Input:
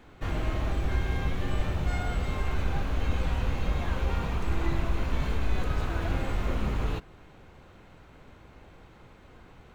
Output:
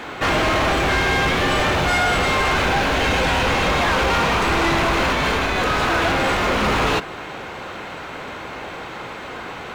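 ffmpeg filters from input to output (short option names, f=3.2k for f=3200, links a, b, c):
-filter_complex "[0:a]asettb=1/sr,asplit=3[a][b][c];[a]atrim=end=2.644[d];[b]atrim=start=2.64:end=3.47,asetpts=PTS-STARTPTS,afade=t=in:d=0.004:c=qsin,afade=t=out:st=0.826:d=0.004:c=qsin,bandreject=f=1.2k:w=7.2[e];[c]atrim=start=3.466[f];[d][e]acrossfade=d=0.004:c1=hsin:c2=qsin[g];[g][f]acrossfade=d=0.004:c1=qsin:c2=hsin,asettb=1/sr,asplit=3[h][i][j];[h]atrim=end=5.104[k];[i]atrim=start=5.1:end=6.63,asetpts=PTS-STARTPTS,afade=t=in:d=0.004:c=qsin,afade=t=out:st=1.526:d=0.004:c=qsin,acompressor=threshold=-25dB:ratio=6[l];[j]atrim=start=6.626[m];[k][l]acrossfade=d=0.004:c1=hsin:c2=qsin[n];[n][m]acrossfade=d=0.004:c1=qsin:c2=hsin,asplit=2[o][p];[p]highpass=f=720:p=1,volume=33dB,asoftclip=type=tanh:threshold=-9.5dB[q];[o][q]amix=inputs=2:normalize=0,lowpass=f=5.2k:p=1,volume=-6dB"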